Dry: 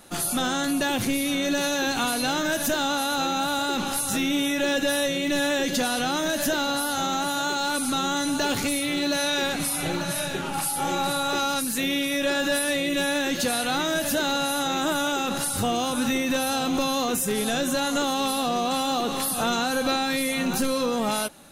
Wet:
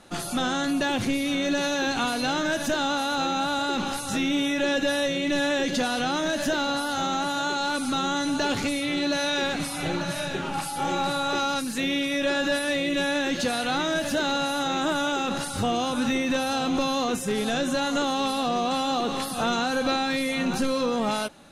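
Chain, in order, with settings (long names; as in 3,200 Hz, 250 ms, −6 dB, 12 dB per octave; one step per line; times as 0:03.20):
high-frequency loss of the air 62 metres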